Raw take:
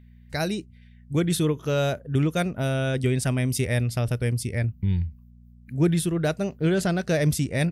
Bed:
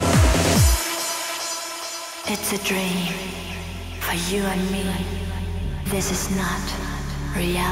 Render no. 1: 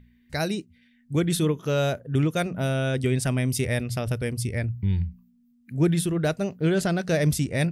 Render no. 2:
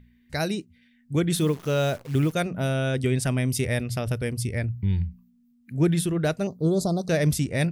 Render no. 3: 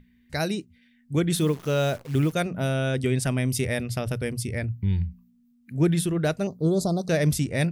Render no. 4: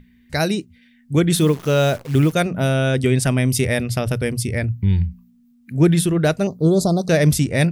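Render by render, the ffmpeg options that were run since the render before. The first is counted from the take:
-af "bandreject=f=60:t=h:w=4,bandreject=f=120:t=h:w=4,bandreject=f=180:t=h:w=4"
-filter_complex "[0:a]asettb=1/sr,asplit=3[a][b][c];[a]atrim=end=1.344[d];[b]atrim=start=1.34:end=2.33,asetpts=PTS-STARTPTS,afade=t=in:d=0.004:c=qsin,afade=t=out:st=0.986:d=0.004:c=qsin,acrusher=bits=8:dc=4:mix=0:aa=0.000001[e];[c]atrim=start=2.326[f];[d][e]acrossfade=d=0.004:c1=hsin:c2=qsin[g];[g][f]acrossfade=d=0.004:c1=qsin:c2=hsin,asettb=1/sr,asplit=3[h][i][j];[h]atrim=end=6.474[k];[i]atrim=start=6.47:end=7.09,asetpts=PTS-STARTPTS,afade=t=in:d=0.004:c=qsin,afade=t=out:st=0.616:d=0.004:c=qsin,asuperstop=centerf=2100:order=12:qfactor=0.83[l];[j]atrim=start=7.086[m];[k][l]acrossfade=d=0.004:c1=hsin:c2=qsin[n];[n][m]acrossfade=d=0.004:c1=qsin:c2=hsin"
-af "bandreject=f=60:t=h:w=6,bandreject=f=120:t=h:w=6"
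-af "volume=7dB"

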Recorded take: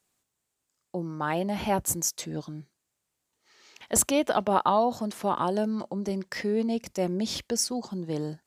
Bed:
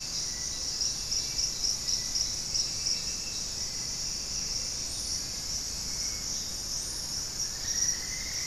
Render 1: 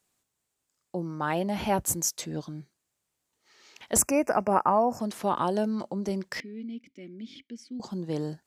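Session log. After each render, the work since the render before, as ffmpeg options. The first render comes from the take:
-filter_complex "[0:a]asettb=1/sr,asplit=3[a][b][c];[a]atrim=end=3.984[d];[b]atrim=start=3.98:end=5,asetpts=PTS-STARTPTS,afade=t=in:d=0.004:c=qsin,afade=t=out:st=1.016:d=0.004:c=qsin,asuperstop=centerf=3600:order=12:qfactor=1.7[e];[c]atrim=start=4.996[f];[d][e]acrossfade=d=0.004:c1=hsin:c2=qsin[g];[g][f]acrossfade=d=0.004:c1=qsin:c2=hsin,asettb=1/sr,asplit=3[h][i][j];[h]atrim=end=6.404[k];[i]atrim=start=6.4:end=7.8,asetpts=PTS-STARTPTS,afade=t=in:d=0.004:c=qsin,afade=t=out:st=1.396:d=0.004:c=qsin,asplit=3[l][m][n];[l]bandpass=f=270:t=q:w=8,volume=0dB[o];[m]bandpass=f=2.29k:t=q:w=8,volume=-6dB[p];[n]bandpass=f=3.01k:t=q:w=8,volume=-9dB[q];[o][p][q]amix=inputs=3:normalize=0[r];[j]atrim=start=7.796[s];[k][r]acrossfade=d=0.004:c1=hsin:c2=qsin[t];[t][s]acrossfade=d=0.004:c1=qsin:c2=hsin"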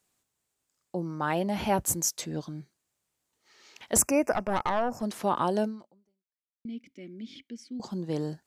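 -filter_complex "[0:a]asettb=1/sr,asplit=3[a][b][c];[a]atrim=end=4.334[d];[b]atrim=start=4.33:end=5.03,asetpts=PTS-STARTPTS,afade=t=in:d=0.004:c=qsin,afade=t=out:st=0.696:d=0.004:c=qsin,aeval=exprs='(tanh(11.2*val(0)+0.55)-tanh(0.55))/11.2':c=same[e];[c]atrim=start=5.026[f];[d][e]acrossfade=d=0.004:c1=hsin:c2=qsin[g];[g][f]acrossfade=d=0.004:c1=qsin:c2=hsin,asplit=2[h][i];[h]atrim=end=6.65,asetpts=PTS-STARTPTS,afade=t=out:st=5.64:d=1.01:c=exp[j];[i]atrim=start=6.65,asetpts=PTS-STARTPTS,afade=t=in:d=0.004:c=hsin[k];[j][k]concat=n=2:v=0:a=1"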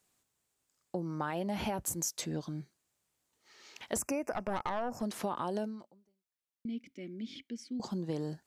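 -af "alimiter=limit=-17.5dB:level=0:latency=1:release=114,acompressor=threshold=-32dB:ratio=4"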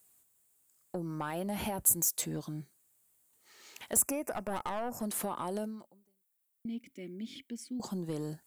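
-af "asoftclip=type=tanh:threshold=-25.5dB,aexciter=amount=5.9:drive=2.6:freq=7.7k"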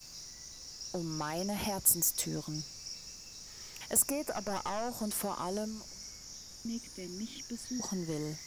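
-filter_complex "[1:a]volume=-14.5dB[a];[0:a][a]amix=inputs=2:normalize=0"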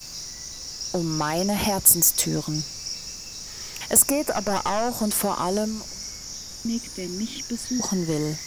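-af "volume=11.5dB,alimiter=limit=-3dB:level=0:latency=1"

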